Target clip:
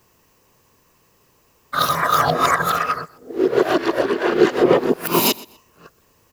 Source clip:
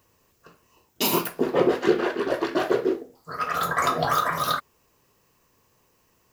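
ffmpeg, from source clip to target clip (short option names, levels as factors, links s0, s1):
-af "areverse,aecho=1:1:124|248:0.0891|0.0214,volume=2"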